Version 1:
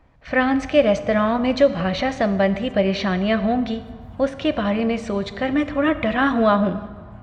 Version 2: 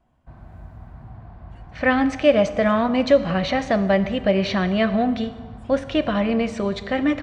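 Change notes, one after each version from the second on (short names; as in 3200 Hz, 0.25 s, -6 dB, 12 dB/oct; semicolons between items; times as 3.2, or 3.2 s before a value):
speech: entry +1.50 s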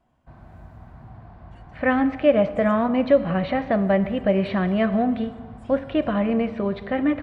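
speech: add air absorption 430 m; background: add low shelf 96 Hz -6.5 dB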